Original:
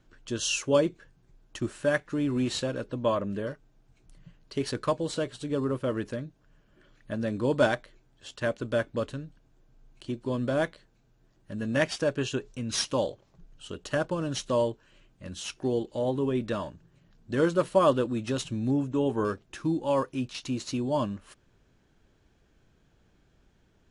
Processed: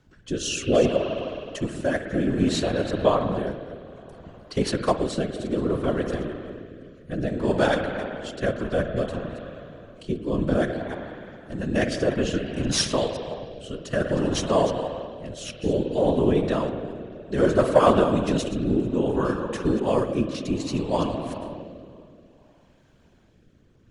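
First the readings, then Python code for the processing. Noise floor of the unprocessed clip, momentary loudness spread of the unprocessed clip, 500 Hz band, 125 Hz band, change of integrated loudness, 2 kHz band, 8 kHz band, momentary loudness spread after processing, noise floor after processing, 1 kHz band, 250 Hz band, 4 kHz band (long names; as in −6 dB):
−65 dBFS, 13 LU, +5.0 dB, +5.0 dB, +4.5 dB, +2.5 dB, +3.0 dB, 16 LU, −57 dBFS, +5.5 dB, +5.5 dB, +4.0 dB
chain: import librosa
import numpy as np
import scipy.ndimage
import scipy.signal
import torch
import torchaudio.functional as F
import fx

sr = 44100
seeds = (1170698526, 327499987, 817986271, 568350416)

p1 = fx.reverse_delay(x, sr, ms=171, wet_db=-12.5)
p2 = fx.rev_spring(p1, sr, rt60_s=3.0, pass_ms=(52,), chirp_ms=60, drr_db=5.5)
p3 = fx.fold_sine(p2, sr, drive_db=4, ceiling_db=-8.5)
p4 = p2 + (p3 * 10.0 ** (-8.0 / 20.0))
p5 = fx.whisperise(p4, sr, seeds[0])
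y = fx.rotary(p5, sr, hz=0.6)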